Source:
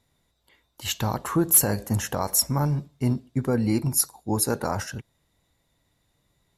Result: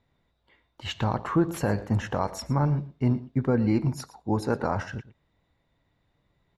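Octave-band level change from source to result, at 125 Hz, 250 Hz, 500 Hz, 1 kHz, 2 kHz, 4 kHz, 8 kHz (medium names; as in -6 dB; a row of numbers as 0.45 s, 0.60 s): 0.0 dB, 0.0 dB, 0.0 dB, 0.0 dB, -0.5 dB, -8.0 dB, -21.5 dB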